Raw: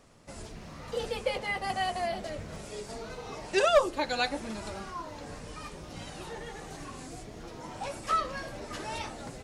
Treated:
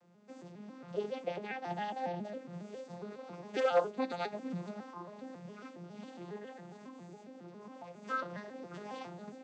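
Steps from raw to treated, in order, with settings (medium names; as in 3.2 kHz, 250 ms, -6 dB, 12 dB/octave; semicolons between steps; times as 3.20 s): vocoder on a broken chord minor triad, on F3, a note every 137 ms; 6.54–8.02 s: compression, threshold -41 dBFS, peak gain reduction 7 dB; trim -5 dB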